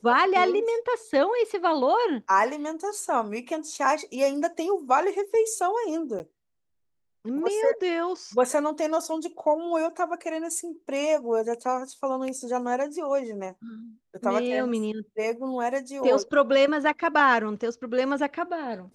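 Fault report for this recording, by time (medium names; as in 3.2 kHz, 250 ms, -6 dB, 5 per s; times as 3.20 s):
6.19–6.20 s: dropout 9.8 ms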